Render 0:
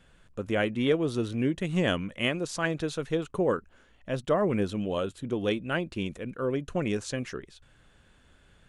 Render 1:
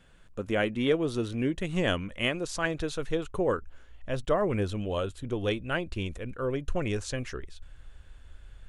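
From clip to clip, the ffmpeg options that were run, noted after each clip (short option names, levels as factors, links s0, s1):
-af "asubboost=boost=8.5:cutoff=63"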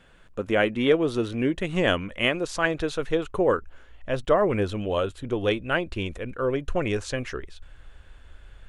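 -af "bass=f=250:g=-5,treble=f=4000:g=-6,volume=2"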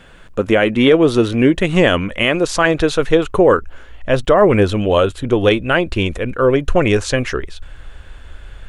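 -af "alimiter=level_in=4.47:limit=0.891:release=50:level=0:latency=1,volume=0.891"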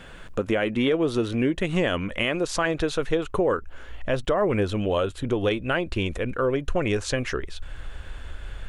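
-af "acompressor=threshold=0.0355:ratio=2"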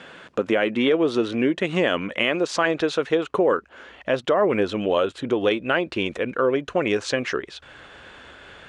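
-af "highpass=220,lowpass=5900,volume=1.5"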